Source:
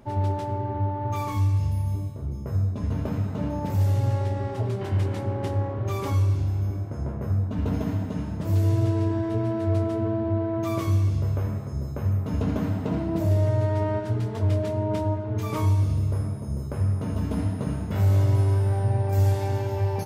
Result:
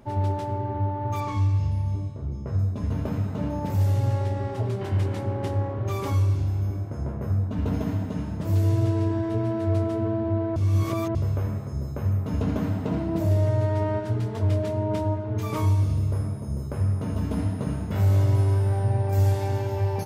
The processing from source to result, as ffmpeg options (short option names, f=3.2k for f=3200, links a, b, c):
-filter_complex "[0:a]asettb=1/sr,asplit=3[a][b][c];[a]atrim=end=1.204[d];[b]atrim=start=1.2:end=2.59,asetpts=PTS-STARTPTS,afade=t=in:d=0.004:c=qsin,afade=t=out:st=1.386:d=0.004:c=qsin,lowpass=5.9k[e];[c]atrim=start=2.586[f];[d][e]acrossfade=d=0.004:c1=hsin:c2=qsin[g];[g][f]acrossfade=d=0.004:c1=qsin:c2=hsin,asplit=3[h][i][j];[h]atrim=end=10.562[k];[i]atrim=start=10.558:end=11.152,asetpts=PTS-STARTPTS,areverse[l];[j]atrim=start=11.148[m];[k][l]acrossfade=d=0.004:c1=hsin:c2=hsin[n];[n][m]acrossfade=d=0.004:c1=hsin:c2=hsin"